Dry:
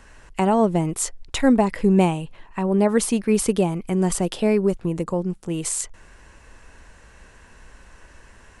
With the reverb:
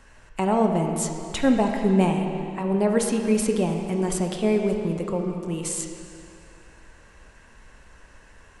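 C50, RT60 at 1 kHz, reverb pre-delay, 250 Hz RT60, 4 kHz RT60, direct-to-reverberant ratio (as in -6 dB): 4.0 dB, 2.6 s, 3 ms, 2.4 s, 2.4 s, 2.5 dB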